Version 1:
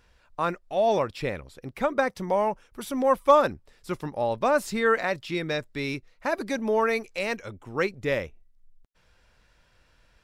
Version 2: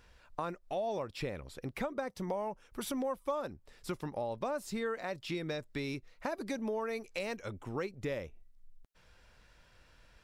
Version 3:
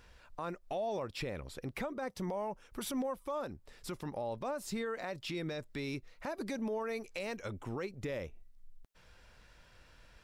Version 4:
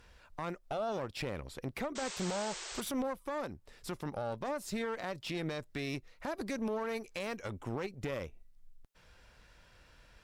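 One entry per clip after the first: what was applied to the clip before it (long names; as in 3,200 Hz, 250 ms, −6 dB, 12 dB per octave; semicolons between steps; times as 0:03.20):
dynamic equaliser 1,900 Hz, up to −5 dB, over −37 dBFS, Q 0.77; downward compressor 4 to 1, threshold −35 dBFS, peak gain reduction 17.5 dB
brickwall limiter −31.5 dBFS, peak gain reduction 8.5 dB; level +2 dB
harmonic generator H 2 −10 dB, 8 −31 dB, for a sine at −29 dBFS; sound drawn into the spectrogram noise, 0:01.95–0:02.81, 340–8,500 Hz −44 dBFS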